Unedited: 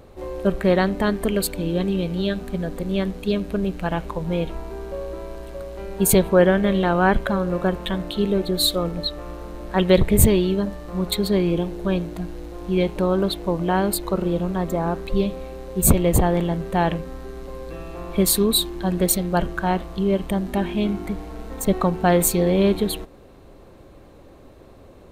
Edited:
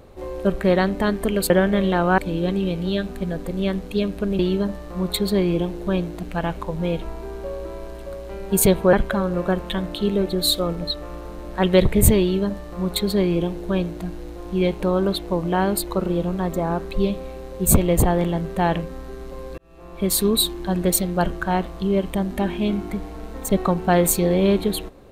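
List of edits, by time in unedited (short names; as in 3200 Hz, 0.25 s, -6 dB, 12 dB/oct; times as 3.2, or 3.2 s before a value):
6.41–7.09 move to 1.5
10.37–12.21 copy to 3.71
17.74–18.44 fade in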